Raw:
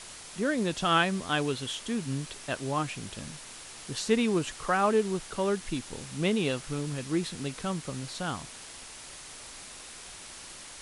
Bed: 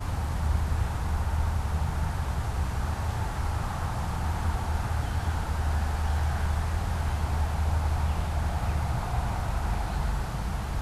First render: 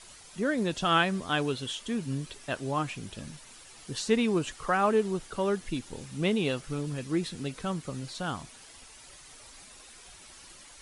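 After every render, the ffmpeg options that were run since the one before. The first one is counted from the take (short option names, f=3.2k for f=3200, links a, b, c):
-af "afftdn=nr=9:nf=-46"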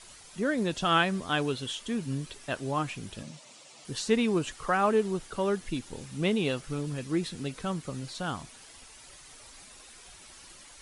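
-filter_complex "[0:a]asettb=1/sr,asplit=3[a][b][c];[a]atrim=end=3.234[d];[b]atrim=start=3.23:end=3.85,asetpts=PTS-STARTPTS,afade=t=in:d=0.004:c=qsin,afade=t=out:st=0.616:d=0.004:c=qsin,highpass=f=130:w=0.5412,highpass=f=130:w=1.3066,equalizer=f=410:t=q:w=4:g=-4,equalizer=f=590:t=q:w=4:g=9,equalizer=f=1.6k:t=q:w=4:g=-9,lowpass=f=8.5k:w=0.5412,lowpass=f=8.5k:w=1.3066[e];[c]atrim=start=3.846[f];[d][e]acrossfade=d=0.004:c1=hsin:c2=qsin[g];[g][f]acrossfade=d=0.004:c1=qsin:c2=hsin"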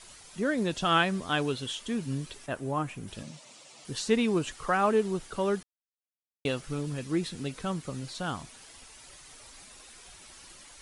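-filter_complex "[0:a]asettb=1/sr,asplit=3[a][b][c];[a]atrim=end=2.464[d];[b]atrim=start=2.46:end=3.08,asetpts=PTS-STARTPTS,afade=t=in:d=0.004:c=qsin,afade=t=out:st=0.616:d=0.004:c=qsin,equalizer=f=4.3k:w=0.77:g=-10[e];[c]atrim=start=3.076[f];[d][e]acrossfade=d=0.004:c1=hsin:c2=qsin[g];[g][f]acrossfade=d=0.004:c1=qsin:c2=hsin,asplit=3[h][i][j];[h]atrim=end=5.63,asetpts=PTS-STARTPTS,afade=t=out:st=5.626:d=0.004:c=hsin[k];[i]atrim=start=5.63:end=6.45,asetpts=PTS-STARTPTS,volume=0[l];[j]atrim=start=6.45,asetpts=PTS-STARTPTS,afade=t=in:d=0.004:c=hsin[m];[k][l][m]concat=n=3:v=0:a=1"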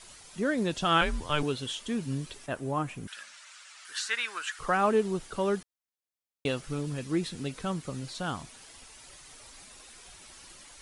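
-filter_complex "[0:a]asettb=1/sr,asplit=3[a][b][c];[a]atrim=end=1.014[d];[b]atrim=start=1.01:end=1.43,asetpts=PTS-STARTPTS,afade=t=in:d=0.004:c=qsin,afade=t=out:st=0.416:d=0.004:c=qsin,afreqshift=-150[e];[c]atrim=start=1.426[f];[d][e]acrossfade=d=0.004:c1=hsin:c2=qsin[g];[g][f]acrossfade=d=0.004:c1=qsin:c2=hsin,asettb=1/sr,asplit=3[h][i][j];[h]atrim=end=3.074[k];[i]atrim=start=3.07:end=4.59,asetpts=PTS-STARTPTS,afade=t=in:d=0.004:c=qsin,afade=t=out:st=1.516:d=0.004:c=qsin,highpass=f=1.5k:t=q:w=4.5[l];[j]atrim=start=4.586[m];[k][l]acrossfade=d=0.004:c1=hsin:c2=qsin[n];[n][m]acrossfade=d=0.004:c1=qsin:c2=hsin"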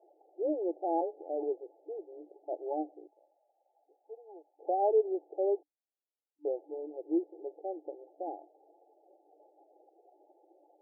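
-af "afftfilt=real='re*between(b*sr/4096,300,870)':imag='im*between(b*sr/4096,300,870)':win_size=4096:overlap=0.75"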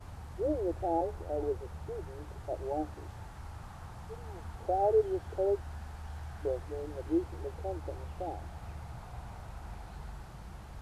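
-filter_complex "[1:a]volume=-16dB[a];[0:a][a]amix=inputs=2:normalize=0"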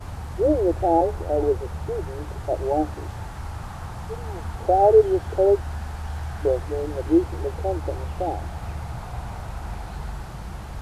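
-af "volume=12dB"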